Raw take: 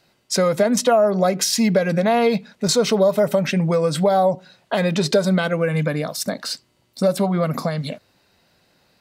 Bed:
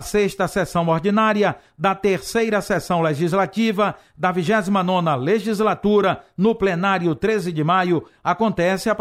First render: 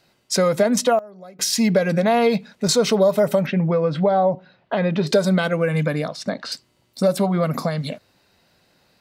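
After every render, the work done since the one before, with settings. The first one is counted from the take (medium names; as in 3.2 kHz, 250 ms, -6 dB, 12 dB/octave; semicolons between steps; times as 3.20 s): 0.55–1.83 s: dip -23 dB, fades 0.44 s logarithmic; 3.46–5.07 s: distance through air 310 m; 6.08–6.52 s: low-pass 4 kHz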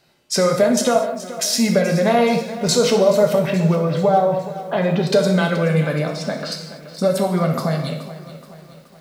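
gated-style reverb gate 270 ms falling, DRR 2.5 dB; bit-crushed delay 426 ms, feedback 55%, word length 7-bit, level -15 dB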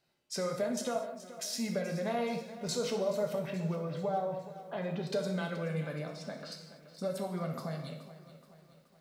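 trim -17.5 dB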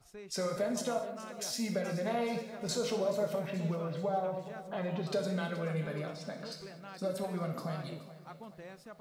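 add bed -30.5 dB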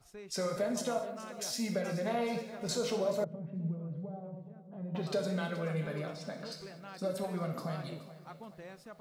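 3.24–4.95 s: band-pass filter 140 Hz, Q 1.2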